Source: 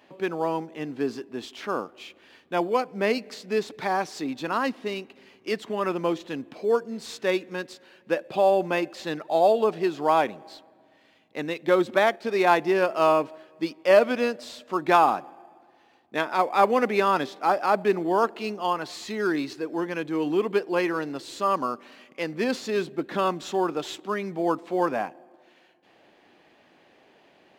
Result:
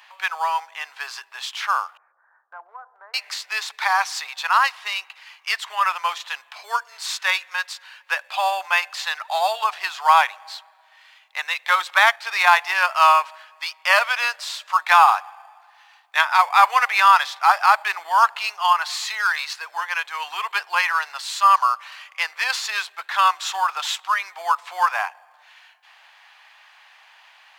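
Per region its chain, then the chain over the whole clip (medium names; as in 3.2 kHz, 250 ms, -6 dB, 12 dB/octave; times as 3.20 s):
1.97–3.14 s: steep low-pass 1.6 kHz 72 dB/octave + peaking EQ 1.2 kHz -11 dB 1.7 oct + compression 10:1, threshold -33 dBFS
whole clip: steep high-pass 900 Hz 36 dB/octave; loudness maximiser +12.5 dB; trim -1 dB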